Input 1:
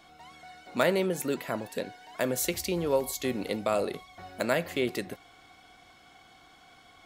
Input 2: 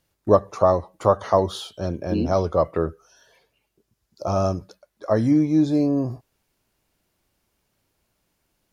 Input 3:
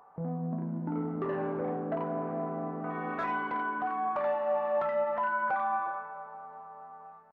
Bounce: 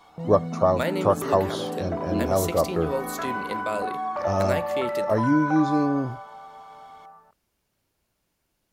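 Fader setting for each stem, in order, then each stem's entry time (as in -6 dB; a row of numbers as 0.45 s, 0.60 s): -2.0 dB, -3.0 dB, +2.0 dB; 0.00 s, 0.00 s, 0.00 s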